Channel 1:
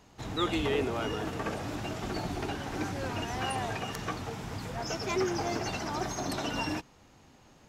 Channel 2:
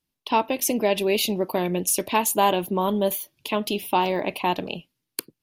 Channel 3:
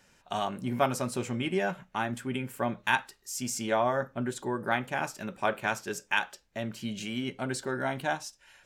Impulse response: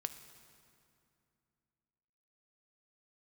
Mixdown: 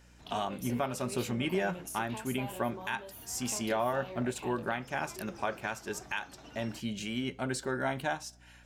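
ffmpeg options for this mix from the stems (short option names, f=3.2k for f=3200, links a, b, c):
-filter_complex "[0:a]volume=-17.5dB[a];[1:a]flanger=delay=22.5:depth=5:speed=0.67,volume=-11dB[b];[2:a]aeval=exprs='val(0)+0.00141*(sin(2*PI*60*n/s)+sin(2*PI*2*60*n/s)/2+sin(2*PI*3*60*n/s)/3+sin(2*PI*4*60*n/s)/4+sin(2*PI*5*60*n/s)/5)':c=same,volume=-1.5dB,asplit=2[c][d];[d]volume=-22dB[e];[a][b]amix=inputs=2:normalize=0,acompressor=threshold=-40dB:ratio=5,volume=0dB[f];[3:a]atrim=start_sample=2205[g];[e][g]afir=irnorm=-1:irlink=0[h];[c][f][h]amix=inputs=3:normalize=0,alimiter=limit=-20dB:level=0:latency=1:release=345"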